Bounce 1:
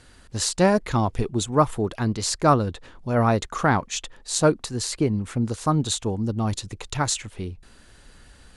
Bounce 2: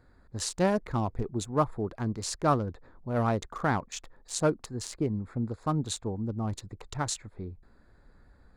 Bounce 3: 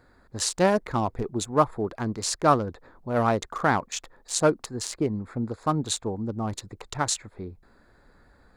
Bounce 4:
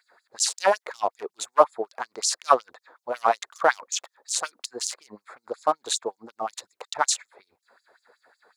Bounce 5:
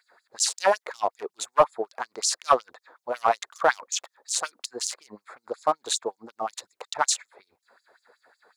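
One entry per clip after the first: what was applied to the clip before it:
Wiener smoothing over 15 samples; gain -7 dB
low shelf 200 Hz -9 dB; gain +6.5 dB
LFO high-pass sine 5.4 Hz 500–6500 Hz
soft clip -5.5 dBFS, distortion -20 dB

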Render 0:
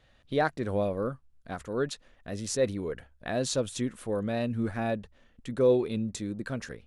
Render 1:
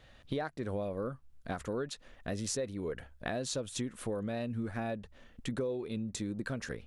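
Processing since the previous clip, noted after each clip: compressor 10:1, threshold -37 dBFS, peak gain reduction 19 dB; gain +4.5 dB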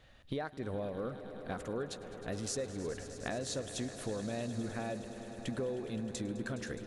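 swelling echo 0.104 s, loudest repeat 5, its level -16 dB; gain -2.5 dB

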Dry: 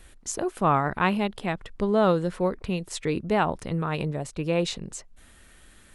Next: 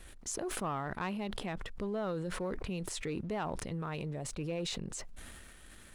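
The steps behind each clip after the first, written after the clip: compressor 2:1, threshold -39 dBFS, peak gain reduction 12.5 dB; sample leveller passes 1; sustainer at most 23 dB/s; gain -6 dB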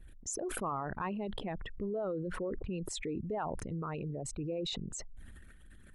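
formant sharpening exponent 2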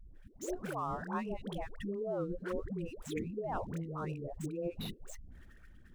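median filter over 9 samples; dispersion highs, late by 0.149 s, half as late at 450 Hz; gain -1 dB

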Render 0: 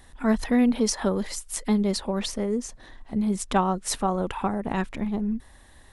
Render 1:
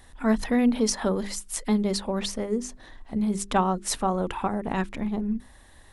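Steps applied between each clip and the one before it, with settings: notches 50/100/150/200/250/300/350/400 Hz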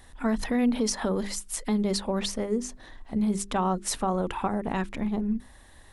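limiter -17 dBFS, peak gain reduction 6.5 dB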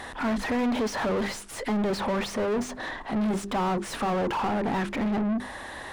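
overdrive pedal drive 34 dB, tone 1300 Hz, clips at -16.5 dBFS; gain -3 dB

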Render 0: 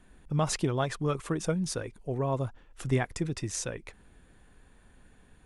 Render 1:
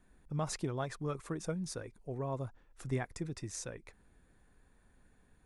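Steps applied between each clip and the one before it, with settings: bell 3000 Hz -6.5 dB 0.41 oct; gain -8 dB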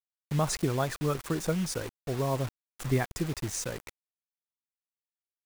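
bit-crush 8-bit; gain +8 dB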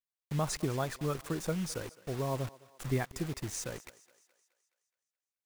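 thinning echo 0.211 s, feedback 52%, high-pass 410 Hz, level -19 dB; gain -4.5 dB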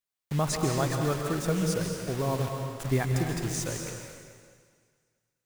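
reverb RT60 1.8 s, pre-delay 0.118 s, DRR 2.5 dB; gain +4.5 dB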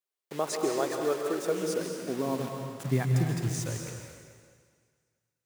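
high-pass sweep 390 Hz -> 68 Hz, 1.47–4.3; gain -3.5 dB

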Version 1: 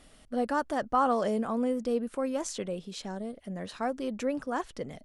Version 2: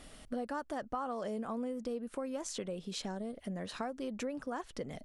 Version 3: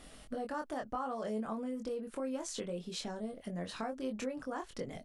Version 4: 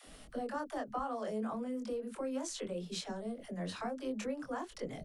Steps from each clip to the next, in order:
compressor 5:1, threshold -40 dBFS, peak gain reduction 17 dB; gain +3.5 dB
doubler 23 ms -4.5 dB; gain -1.5 dB
dispersion lows, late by 73 ms, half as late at 300 Hz

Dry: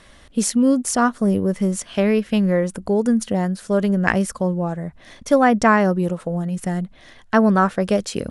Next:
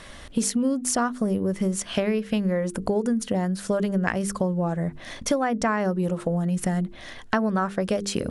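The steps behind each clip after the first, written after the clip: notches 50/100/150/200/250/300/350/400/450 Hz; compressor 6:1, threshold -27 dBFS, peak gain reduction 16 dB; gain +5.5 dB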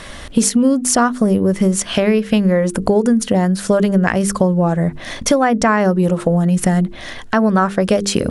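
maximiser +11 dB; gain -1 dB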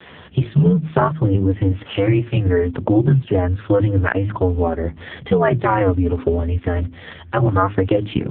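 frequency shift -93 Hz; AMR-NB 4.75 kbps 8000 Hz

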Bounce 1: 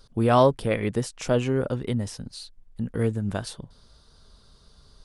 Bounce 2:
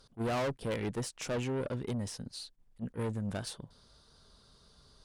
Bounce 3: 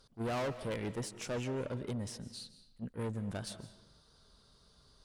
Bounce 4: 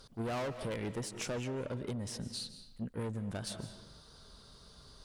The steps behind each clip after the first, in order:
low shelf 69 Hz -9 dB; tube stage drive 27 dB, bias 0.25; attack slew limiter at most 470 dB/s; gain -3 dB
digital reverb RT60 0.85 s, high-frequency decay 0.75×, pre-delay 0.115 s, DRR 13 dB; gain -3 dB
compressor 4:1, threshold -45 dBFS, peak gain reduction 10 dB; gain +8 dB

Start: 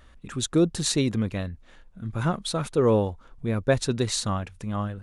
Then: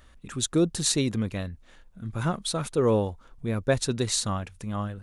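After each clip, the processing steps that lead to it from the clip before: high shelf 5600 Hz +6.5 dB; gain -2 dB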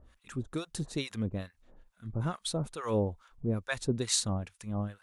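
harmonic tremolo 2.3 Hz, depth 100%, crossover 840 Hz; gain -1 dB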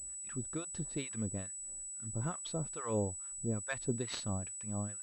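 pulse-width modulation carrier 7900 Hz; gain -5 dB

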